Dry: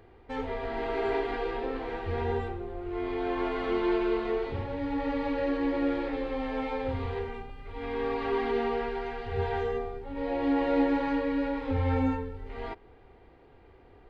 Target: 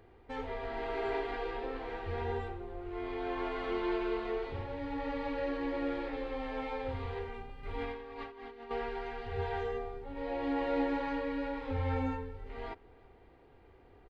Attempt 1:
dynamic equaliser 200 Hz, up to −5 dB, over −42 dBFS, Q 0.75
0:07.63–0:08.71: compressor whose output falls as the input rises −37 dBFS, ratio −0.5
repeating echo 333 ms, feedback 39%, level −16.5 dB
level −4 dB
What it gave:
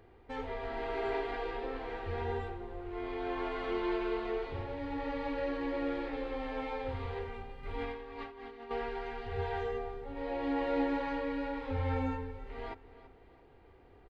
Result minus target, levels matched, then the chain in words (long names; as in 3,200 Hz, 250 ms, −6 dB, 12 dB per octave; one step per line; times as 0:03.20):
echo-to-direct +10.5 dB
dynamic equaliser 200 Hz, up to −5 dB, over −42 dBFS, Q 0.75
0:07.63–0:08.71: compressor whose output falls as the input rises −37 dBFS, ratio −0.5
repeating echo 333 ms, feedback 39%, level −27 dB
level −4 dB